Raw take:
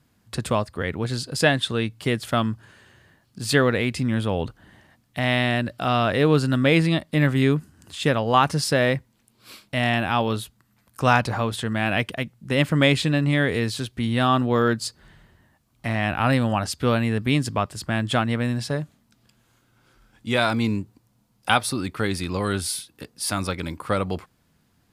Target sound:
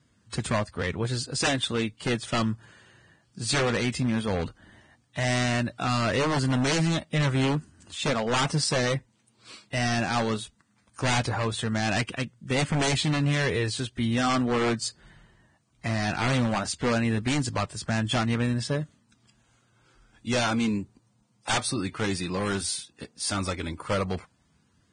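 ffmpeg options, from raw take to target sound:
ffmpeg -i in.wav -af "flanger=delay=0.6:depth=5.5:regen=-67:speed=0.16:shape=sinusoidal,aeval=exprs='0.0891*(abs(mod(val(0)/0.0891+3,4)-2)-1)':channel_layout=same,volume=2dB" -ar 22050 -c:a libvorbis -b:a 16k out.ogg

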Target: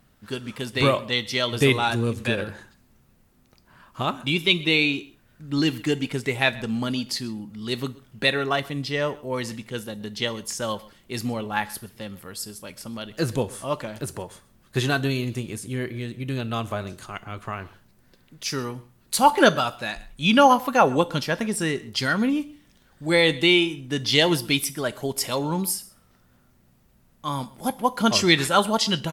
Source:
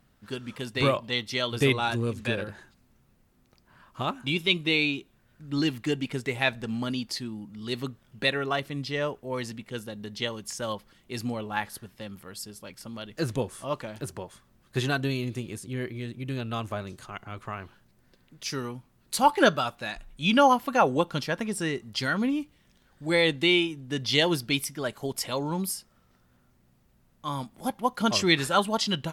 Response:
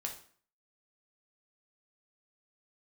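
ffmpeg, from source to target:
-filter_complex "[0:a]aecho=1:1:129:0.0794,asplit=2[link_01][link_02];[1:a]atrim=start_sample=2205,highshelf=frequency=5200:gain=11.5[link_03];[link_02][link_03]afir=irnorm=-1:irlink=0,volume=-12dB[link_04];[link_01][link_04]amix=inputs=2:normalize=0,volume=2.5dB"

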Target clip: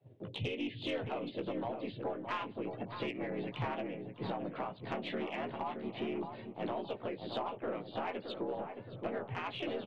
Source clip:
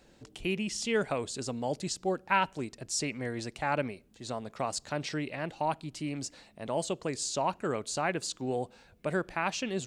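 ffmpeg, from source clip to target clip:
ffmpeg -i in.wav -filter_complex "[0:a]afftdn=noise_reduction=17:noise_floor=-54,afreqshift=76,aresample=8000,volume=18.5dB,asoftclip=hard,volume=-18.5dB,aresample=44100,equalizer=frequency=125:width_type=o:width=0.33:gain=12,equalizer=frequency=250:width_type=o:width=0.33:gain=-6,equalizer=frequency=1600:width_type=o:width=0.33:gain=-7,agate=range=-11dB:threshold=-59dB:ratio=16:detection=peak,acompressor=threshold=-41dB:ratio=16,asplit=2[link_01][link_02];[link_02]adelay=17,volume=-7dB[link_03];[link_01][link_03]amix=inputs=2:normalize=0,aeval=exprs='0.0447*(cos(1*acos(clip(val(0)/0.0447,-1,1)))-cos(1*PI/2))+0.00158*(cos(4*acos(clip(val(0)/0.0447,-1,1)))-cos(4*PI/2))':channel_layout=same,adynamicequalizer=threshold=0.00112:dfrequency=140:dqfactor=0.87:tfrequency=140:tqfactor=0.87:attack=5:release=100:ratio=0.375:range=1.5:mode=boostabove:tftype=bell,asplit=3[link_04][link_05][link_06];[link_05]asetrate=37084,aresample=44100,atempo=1.18921,volume=-7dB[link_07];[link_06]asetrate=52444,aresample=44100,atempo=0.840896,volume=-8dB[link_08];[link_04][link_07][link_08]amix=inputs=3:normalize=0,asplit=2[link_09][link_10];[link_10]adelay=619,lowpass=frequency=1200:poles=1,volume=-6.5dB,asplit=2[link_11][link_12];[link_12]adelay=619,lowpass=frequency=1200:poles=1,volume=0.45,asplit=2[link_13][link_14];[link_14]adelay=619,lowpass=frequency=1200:poles=1,volume=0.45,asplit=2[link_15][link_16];[link_16]adelay=619,lowpass=frequency=1200:poles=1,volume=0.45,asplit=2[link_17][link_18];[link_18]adelay=619,lowpass=frequency=1200:poles=1,volume=0.45[link_19];[link_11][link_13][link_15][link_17][link_19]amix=inputs=5:normalize=0[link_20];[link_09][link_20]amix=inputs=2:normalize=0,asoftclip=type=tanh:threshold=-32dB,volume=5dB" out.wav

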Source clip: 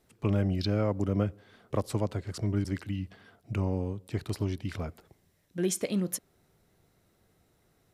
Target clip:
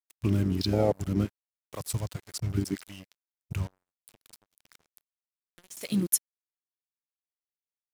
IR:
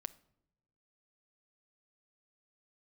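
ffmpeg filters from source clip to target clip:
-filter_complex "[0:a]crystalizer=i=5.5:c=0,asettb=1/sr,asplit=3[link_01][link_02][link_03];[link_01]atrim=end=3.674[link_04];[link_02]atrim=start=3.67:end=5.77,asetpts=PTS-STARTPTS,afade=type=in:duration=0.004:curve=qsin,afade=type=out:start_time=2.096:duration=0.004:curve=qsin,acompressor=threshold=-41dB:ratio=5[link_05];[link_03]atrim=start=5.766[link_06];[link_04][link_05]acrossfade=duration=0.004:curve1=hsin:curve2=qsin[link_07];[link_07][link_06]acrossfade=duration=0.004:curve1=qsin:curve2=hsin,lowshelf=frequency=410:gain=-8,acrusher=bits=5:mix=0:aa=0.5,afwtdn=0.0794,volume=9dB"

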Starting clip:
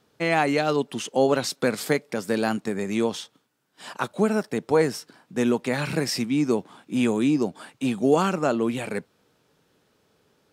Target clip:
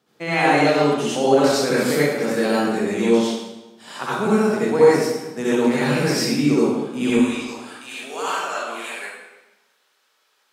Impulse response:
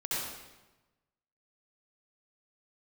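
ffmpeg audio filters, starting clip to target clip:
-filter_complex "[0:a]asetnsamples=nb_out_samples=441:pad=0,asendcmd='7.1 highpass f 1100',highpass=140[link_01];[1:a]atrim=start_sample=2205[link_02];[link_01][link_02]afir=irnorm=-1:irlink=0"

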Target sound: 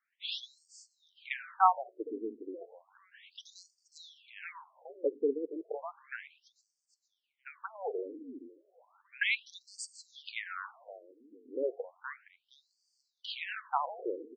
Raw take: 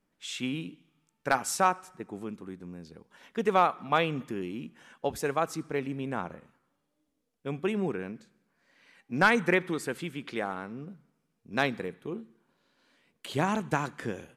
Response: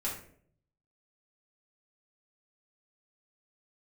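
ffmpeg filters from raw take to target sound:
-filter_complex "[0:a]asplit=5[link_01][link_02][link_03][link_04][link_05];[link_02]adelay=466,afreqshift=-120,volume=-13.5dB[link_06];[link_03]adelay=932,afreqshift=-240,volume=-22.1dB[link_07];[link_04]adelay=1398,afreqshift=-360,volume=-30.8dB[link_08];[link_05]adelay=1864,afreqshift=-480,volume=-39.4dB[link_09];[link_01][link_06][link_07][link_08][link_09]amix=inputs=5:normalize=0,afftfilt=real='re*between(b*sr/1024,340*pow(6300/340,0.5+0.5*sin(2*PI*0.33*pts/sr))/1.41,340*pow(6300/340,0.5+0.5*sin(2*PI*0.33*pts/sr))*1.41)':imag='im*between(b*sr/1024,340*pow(6300/340,0.5+0.5*sin(2*PI*0.33*pts/sr))/1.41,340*pow(6300/340,0.5+0.5*sin(2*PI*0.33*pts/sr))*1.41)':win_size=1024:overlap=0.75,volume=2dB"

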